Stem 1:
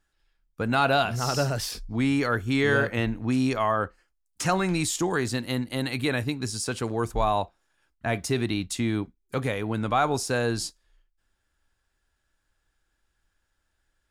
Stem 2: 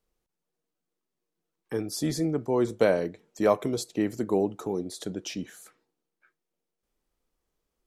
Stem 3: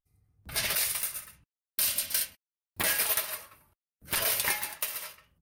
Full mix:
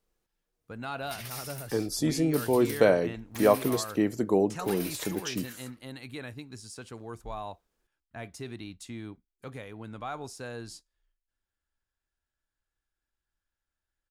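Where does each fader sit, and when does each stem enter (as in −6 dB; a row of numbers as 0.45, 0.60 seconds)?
−14.0, +1.0, −13.0 decibels; 0.10, 0.00, 0.55 seconds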